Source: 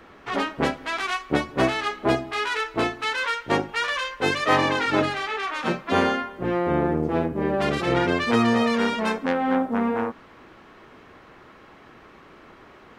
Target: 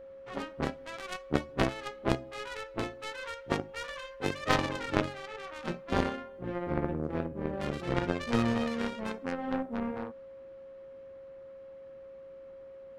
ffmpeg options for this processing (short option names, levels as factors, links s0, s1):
-af "aeval=exprs='val(0)+0.0355*sin(2*PI*540*n/s)':c=same,aeval=exprs='0.531*(cos(1*acos(clip(val(0)/0.531,-1,1)))-cos(1*PI/2))+0.15*(cos(3*acos(clip(val(0)/0.531,-1,1)))-cos(3*PI/2))':c=same,lowshelf=f=250:g=9.5,volume=0.794"